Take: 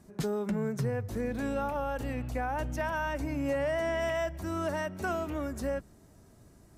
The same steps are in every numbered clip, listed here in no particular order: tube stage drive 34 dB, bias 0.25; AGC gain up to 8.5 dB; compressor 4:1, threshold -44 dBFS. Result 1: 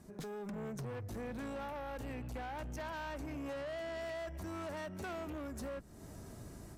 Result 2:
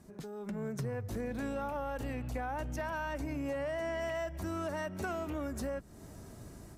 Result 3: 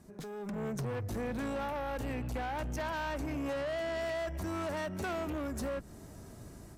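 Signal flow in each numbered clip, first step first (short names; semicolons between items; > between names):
tube stage > AGC > compressor; compressor > tube stage > AGC; tube stage > compressor > AGC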